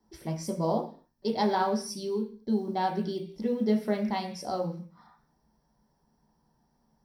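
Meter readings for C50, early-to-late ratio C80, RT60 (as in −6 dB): 9.5 dB, 14.5 dB, 0.45 s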